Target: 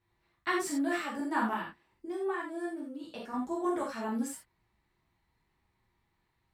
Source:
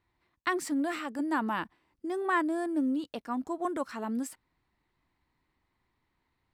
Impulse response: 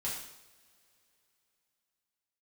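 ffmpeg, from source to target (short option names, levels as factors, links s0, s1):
-filter_complex "[0:a]asettb=1/sr,asplit=3[s0][s1][s2];[s0]atrim=end=1.534[s3];[s1]atrim=start=1.53:end=3.34,asetpts=PTS-STARTPTS,afade=t=in:d=0.004:c=qsin,afade=t=out:st=1.806:d=0.004:c=qsin,acompressor=threshold=0.0158:ratio=4[s4];[s2]atrim=start=3.336[s5];[s3][s4]acrossfade=d=0.004:c1=hsin:c2=qsin[s6];[s6][s5]acrossfade=d=0.004:c1=qsin:c2=hsin[s7];[1:a]atrim=start_sample=2205,atrim=end_sample=3969,asetrate=38367,aresample=44100[s8];[s7][s8]afir=irnorm=-1:irlink=0,volume=0.794"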